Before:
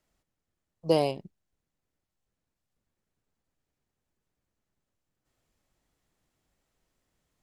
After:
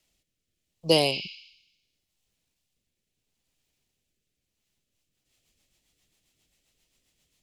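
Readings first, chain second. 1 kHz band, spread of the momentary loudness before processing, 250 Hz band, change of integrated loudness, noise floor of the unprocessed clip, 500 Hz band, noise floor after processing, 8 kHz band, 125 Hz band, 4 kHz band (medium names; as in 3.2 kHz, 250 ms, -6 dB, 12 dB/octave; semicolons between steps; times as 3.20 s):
+0.5 dB, 16 LU, +2.0 dB, +3.5 dB, -85 dBFS, +1.5 dB, -82 dBFS, +12.0 dB, +2.0 dB, +14.0 dB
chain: spectral replace 1.14–2.04 s, 2.1–7 kHz both; rotary cabinet horn 0.75 Hz, later 7.5 Hz, at 4.45 s; resonant high shelf 2 kHz +9.5 dB, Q 1.5; trim +2.5 dB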